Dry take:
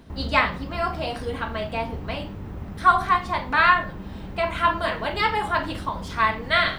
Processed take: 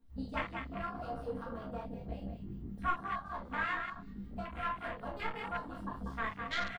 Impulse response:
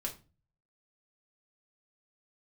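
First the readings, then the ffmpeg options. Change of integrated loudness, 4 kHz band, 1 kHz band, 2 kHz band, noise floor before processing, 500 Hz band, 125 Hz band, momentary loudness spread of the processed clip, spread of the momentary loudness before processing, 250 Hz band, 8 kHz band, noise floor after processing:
−16.5 dB, −18.5 dB, −17.0 dB, −16.0 dB, −36 dBFS, −15.5 dB, −13.0 dB, 8 LU, 14 LU, −10.0 dB, can't be measured, −50 dBFS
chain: -filter_complex "[0:a]aemphasis=mode=production:type=50fm,aeval=exprs='0.668*(cos(1*acos(clip(val(0)/0.668,-1,1)))-cos(1*PI/2))+0.075*(cos(3*acos(clip(val(0)/0.668,-1,1)))-cos(3*PI/2))+0.075*(cos(4*acos(clip(val(0)/0.668,-1,1)))-cos(4*PI/2))+0.0376*(cos(6*acos(clip(val(0)/0.668,-1,1)))-cos(6*PI/2))+0.0376*(cos(7*acos(clip(val(0)/0.668,-1,1)))-cos(7*PI/2))':channel_layout=same,highshelf=frequency=6600:gain=-4.5,acompressor=threshold=-37dB:ratio=2.5,acrossover=split=1900[link_01][link_02];[link_01]aeval=exprs='val(0)*(1-0.5/2+0.5/2*cos(2*PI*5.3*n/s))':channel_layout=same[link_03];[link_02]aeval=exprs='val(0)*(1-0.5/2-0.5/2*cos(2*PI*5.3*n/s))':channel_layout=same[link_04];[link_03][link_04]amix=inputs=2:normalize=0,asplit=5[link_05][link_06][link_07][link_08][link_09];[link_06]adelay=191,afreqshift=44,volume=-7dB[link_10];[link_07]adelay=382,afreqshift=88,volume=-16.4dB[link_11];[link_08]adelay=573,afreqshift=132,volume=-25.7dB[link_12];[link_09]adelay=764,afreqshift=176,volume=-35.1dB[link_13];[link_05][link_10][link_11][link_12][link_13]amix=inputs=5:normalize=0,flanger=delay=15.5:depth=4.9:speed=1.8,asplit=2[link_14][link_15];[link_15]adelay=30,volume=-9dB[link_16];[link_14][link_16]amix=inputs=2:normalize=0[link_17];[1:a]atrim=start_sample=2205,atrim=end_sample=3528,asetrate=52920,aresample=44100[link_18];[link_17][link_18]afir=irnorm=-1:irlink=0,afwtdn=0.00562,volume=5dB"

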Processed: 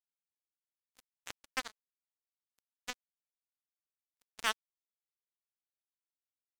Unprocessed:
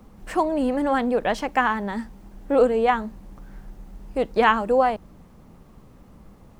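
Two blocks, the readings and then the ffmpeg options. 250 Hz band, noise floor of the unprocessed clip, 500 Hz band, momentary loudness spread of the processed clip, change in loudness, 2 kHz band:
−35.0 dB, −50 dBFS, −34.0 dB, 16 LU, −17.5 dB, −15.5 dB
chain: -filter_complex "[0:a]highpass=frequency=190:poles=1,acrossover=split=1700[link_01][link_02];[link_01]acompressor=threshold=-32dB:ratio=6[link_03];[link_03][link_02]amix=inputs=2:normalize=0,acrusher=bits=2:mix=0:aa=0.5,asoftclip=type=tanh:threshold=-19.5dB,volume=2dB"

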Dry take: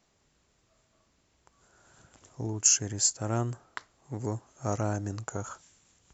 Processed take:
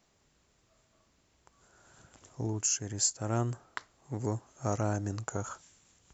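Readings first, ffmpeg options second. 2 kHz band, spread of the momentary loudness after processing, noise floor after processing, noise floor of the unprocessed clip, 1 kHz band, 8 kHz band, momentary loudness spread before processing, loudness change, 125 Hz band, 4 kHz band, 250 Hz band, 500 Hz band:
−1.5 dB, 15 LU, −71 dBFS, −71 dBFS, −1.0 dB, can't be measured, 20 LU, −4.5 dB, −0.5 dB, −5.0 dB, −0.5 dB, −1.0 dB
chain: -af "alimiter=limit=-16.5dB:level=0:latency=1:release=449"

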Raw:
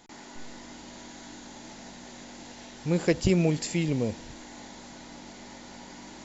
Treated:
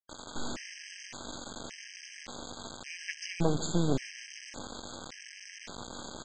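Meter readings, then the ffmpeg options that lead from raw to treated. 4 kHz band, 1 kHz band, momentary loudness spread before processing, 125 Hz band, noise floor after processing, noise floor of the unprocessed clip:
0.0 dB, +0.5 dB, 20 LU, −6.5 dB, −50 dBFS, −46 dBFS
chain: -af "aecho=1:1:145|290|435|580|725:0.141|0.0819|0.0475|0.0276|0.016,alimiter=limit=-17.5dB:level=0:latency=1:release=399,aresample=16000,acrusher=bits=4:dc=4:mix=0:aa=0.000001,aresample=44100,afftfilt=real='re*gt(sin(2*PI*0.88*pts/sr)*(1-2*mod(floor(b*sr/1024/1600),2)),0)':imag='im*gt(sin(2*PI*0.88*pts/sr)*(1-2*mod(floor(b*sr/1024/1600),2)),0)':win_size=1024:overlap=0.75,volume=5dB"

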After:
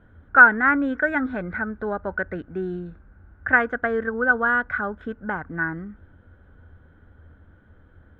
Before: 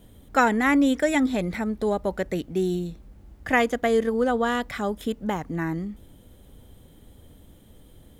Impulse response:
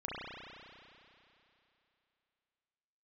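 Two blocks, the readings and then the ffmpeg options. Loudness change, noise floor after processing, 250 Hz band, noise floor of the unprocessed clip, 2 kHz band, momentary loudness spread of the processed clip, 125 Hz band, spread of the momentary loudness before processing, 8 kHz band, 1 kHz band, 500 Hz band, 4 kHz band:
+3.0 dB, −54 dBFS, −4.0 dB, −52 dBFS, +10.5 dB, 19 LU, −3.5 dB, 10 LU, below −30 dB, +3.5 dB, −3.5 dB, below −15 dB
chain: -af "lowpass=frequency=1500:width_type=q:width=13,equalizer=frequency=84:width_type=o:width=0.29:gain=13,volume=-4.5dB"

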